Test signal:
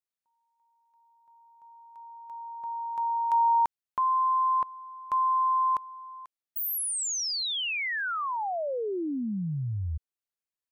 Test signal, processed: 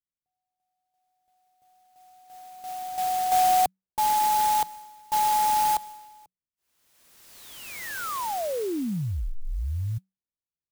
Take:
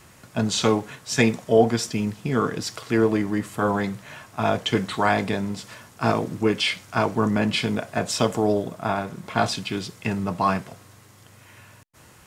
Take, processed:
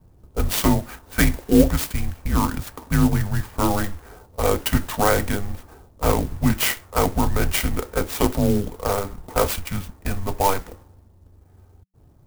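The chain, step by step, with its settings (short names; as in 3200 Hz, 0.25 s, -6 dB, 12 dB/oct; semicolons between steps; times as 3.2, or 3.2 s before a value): low-pass opened by the level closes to 420 Hz, open at -19 dBFS; frequency shift -190 Hz; clock jitter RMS 0.063 ms; gain +2.5 dB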